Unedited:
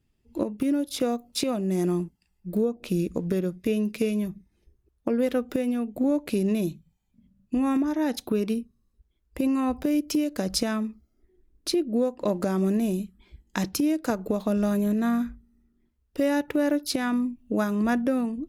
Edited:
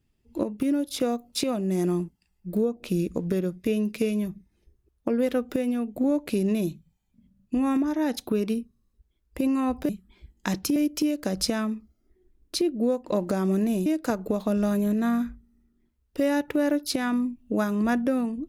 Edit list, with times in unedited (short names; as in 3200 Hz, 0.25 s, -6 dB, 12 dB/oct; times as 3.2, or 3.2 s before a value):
12.99–13.86 move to 9.89